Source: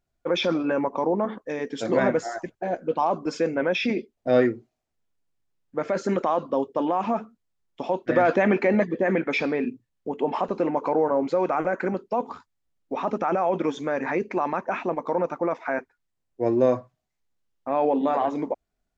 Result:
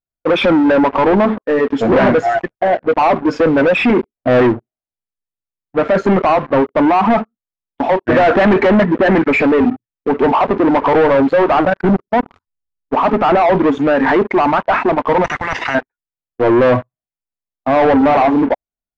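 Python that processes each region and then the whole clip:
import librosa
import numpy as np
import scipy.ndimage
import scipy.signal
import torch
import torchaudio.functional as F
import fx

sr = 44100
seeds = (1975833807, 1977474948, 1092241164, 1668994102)

y = fx.chain(x, sr, fx.bass_treble(bass_db=9, treble_db=14),
    fx.level_steps(step_db=23), at=(11.65, 12.93))
y = fx.chain(y, sr, fx.highpass(hz=150.0, slope=12),
    fx.level_steps(step_db=9),
    fx.spectral_comp(ratio=10.0), at=(15.24, 15.75))
y = fx.noise_reduce_blind(y, sr, reduce_db=8)
y = fx.leveller(y, sr, passes=5)
y = scipy.signal.sosfilt(scipy.signal.butter(2, 2300.0, 'lowpass', fs=sr, output='sos'), y)
y = y * 10.0 ** (1.5 / 20.0)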